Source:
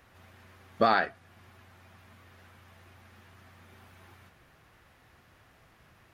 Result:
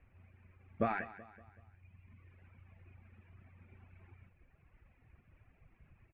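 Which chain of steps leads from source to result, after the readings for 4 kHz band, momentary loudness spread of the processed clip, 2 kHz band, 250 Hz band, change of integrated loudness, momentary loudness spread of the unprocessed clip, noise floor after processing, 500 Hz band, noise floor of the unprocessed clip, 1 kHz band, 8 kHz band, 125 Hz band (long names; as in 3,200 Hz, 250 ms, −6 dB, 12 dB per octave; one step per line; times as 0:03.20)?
−26.5 dB, 20 LU, −12.0 dB, −5.0 dB, −12.0 dB, 7 LU, −70 dBFS, −10.5 dB, −62 dBFS, −12.5 dB, below −15 dB, −1.5 dB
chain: reverb reduction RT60 1.9 s
spectral tilt −4.5 dB per octave
automatic gain control gain up to 4.5 dB
transistor ladder low-pass 2,600 Hz, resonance 75%
repeating echo 189 ms, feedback 46%, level −16 dB
level −4.5 dB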